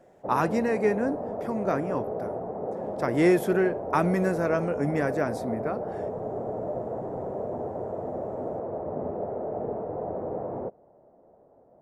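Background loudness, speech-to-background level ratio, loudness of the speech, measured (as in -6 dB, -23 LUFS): -33.5 LUFS, 6.5 dB, -27.0 LUFS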